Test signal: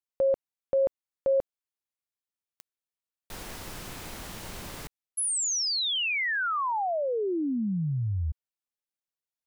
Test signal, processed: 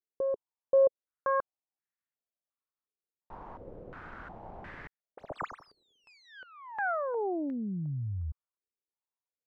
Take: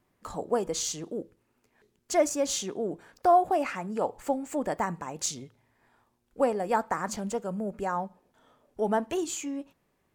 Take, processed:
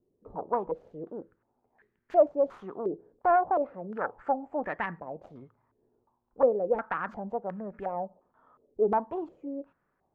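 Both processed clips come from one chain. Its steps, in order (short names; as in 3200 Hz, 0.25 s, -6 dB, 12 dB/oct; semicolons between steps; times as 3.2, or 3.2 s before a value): self-modulated delay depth 0.27 ms; stepped low-pass 2.8 Hz 420–1800 Hz; gain -6 dB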